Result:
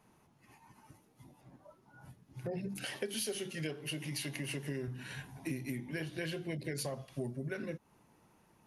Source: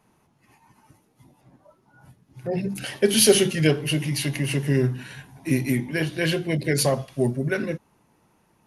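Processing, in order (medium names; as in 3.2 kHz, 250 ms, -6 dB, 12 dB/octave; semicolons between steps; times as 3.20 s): 2.78–4.88 s: high-pass 210 Hz 6 dB/octave; compression 6:1, threshold -33 dBFS, peak gain reduction 20 dB; trim -3.5 dB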